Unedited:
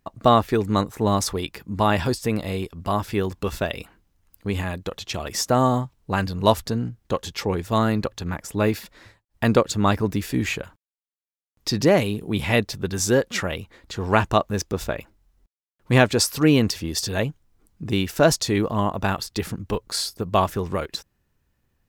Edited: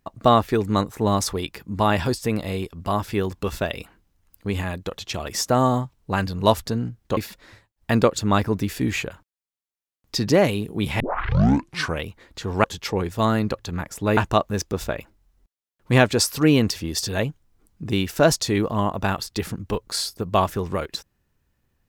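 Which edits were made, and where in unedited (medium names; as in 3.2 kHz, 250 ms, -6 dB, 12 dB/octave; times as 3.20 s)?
7.17–8.70 s: move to 14.17 s
12.53 s: tape start 1.04 s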